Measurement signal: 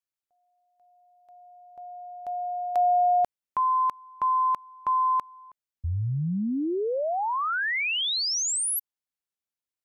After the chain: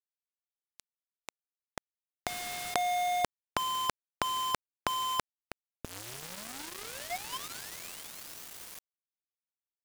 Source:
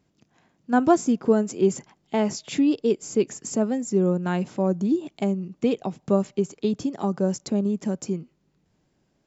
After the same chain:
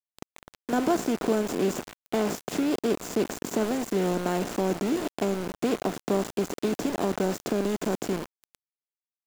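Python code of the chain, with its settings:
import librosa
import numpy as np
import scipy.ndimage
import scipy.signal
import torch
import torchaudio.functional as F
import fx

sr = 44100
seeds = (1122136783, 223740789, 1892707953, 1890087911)

y = fx.bin_compress(x, sr, power=0.4)
y = np.where(np.abs(y) >= 10.0 ** (-22.0 / 20.0), y, 0.0)
y = F.gain(torch.from_numpy(y), -8.5).numpy()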